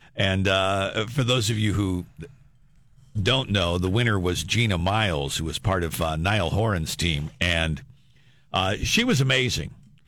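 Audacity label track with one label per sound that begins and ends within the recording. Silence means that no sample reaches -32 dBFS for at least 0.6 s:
3.150000	7.790000	sound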